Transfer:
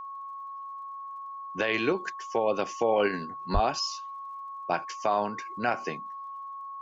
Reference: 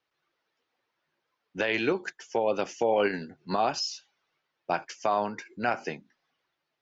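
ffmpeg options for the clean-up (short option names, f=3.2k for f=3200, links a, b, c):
-filter_complex "[0:a]adeclick=t=4,bandreject=f=1.1k:w=30,asplit=3[a][b][c];[a]afade=t=out:st=3.53:d=0.02[d];[b]highpass=f=140:w=0.5412,highpass=f=140:w=1.3066,afade=t=in:st=3.53:d=0.02,afade=t=out:st=3.65:d=0.02[e];[c]afade=t=in:st=3.65:d=0.02[f];[d][e][f]amix=inputs=3:normalize=0"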